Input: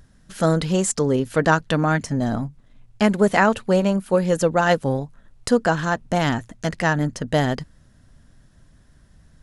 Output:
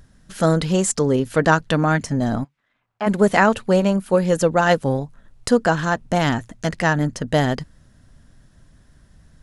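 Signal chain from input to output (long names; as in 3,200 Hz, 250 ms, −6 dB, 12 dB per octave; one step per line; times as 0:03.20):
0:02.43–0:03.06: resonant band-pass 2,700 Hz → 910 Hz, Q 1.4
level +1.5 dB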